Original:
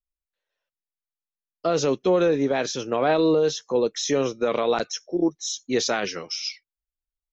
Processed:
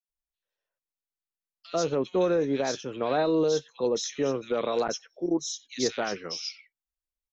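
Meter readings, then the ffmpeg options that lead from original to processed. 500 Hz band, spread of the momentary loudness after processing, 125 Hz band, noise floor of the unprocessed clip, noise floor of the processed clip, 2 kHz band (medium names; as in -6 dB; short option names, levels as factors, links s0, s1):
-4.5 dB, 8 LU, -4.5 dB, under -85 dBFS, under -85 dBFS, -6.5 dB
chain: -filter_complex "[0:a]acrossover=split=2300[s0][s1];[s0]adelay=90[s2];[s2][s1]amix=inputs=2:normalize=0,volume=0.596"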